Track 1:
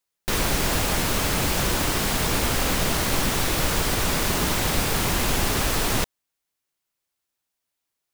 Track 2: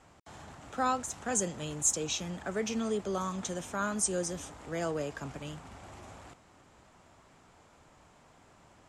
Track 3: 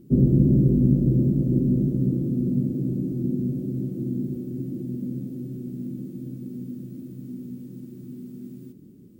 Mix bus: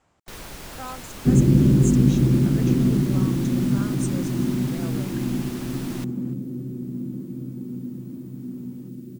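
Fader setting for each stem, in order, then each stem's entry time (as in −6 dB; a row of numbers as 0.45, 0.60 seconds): −15.5, −7.0, +2.0 decibels; 0.00, 0.00, 1.15 seconds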